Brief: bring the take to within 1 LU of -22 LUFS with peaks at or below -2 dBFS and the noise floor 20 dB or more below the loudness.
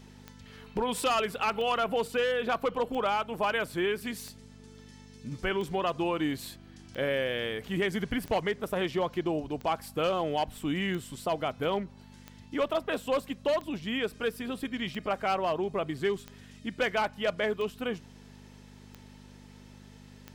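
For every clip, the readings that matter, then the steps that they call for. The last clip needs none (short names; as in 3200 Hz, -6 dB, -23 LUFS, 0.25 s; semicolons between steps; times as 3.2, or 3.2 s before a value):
clicks 16; hum 50 Hz; harmonics up to 250 Hz; hum level -50 dBFS; loudness -31.0 LUFS; peak -19.5 dBFS; loudness target -22.0 LUFS
-> de-click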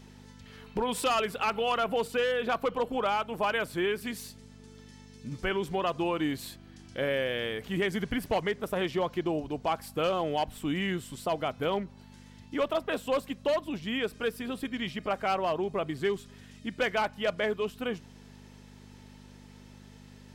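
clicks 0; hum 50 Hz; harmonics up to 250 Hz; hum level -50 dBFS
-> de-hum 50 Hz, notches 5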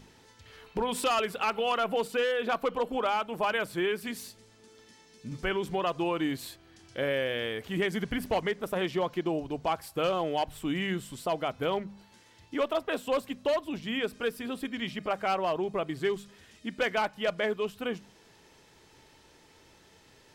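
hum none; loudness -31.0 LUFS; peak -19.5 dBFS; loudness target -22.0 LUFS
-> gain +9 dB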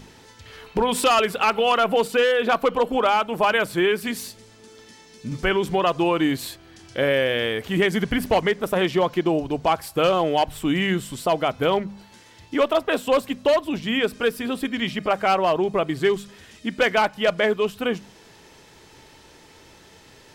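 loudness -22.0 LUFS; peak -10.5 dBFS; noise floor -50 dBFS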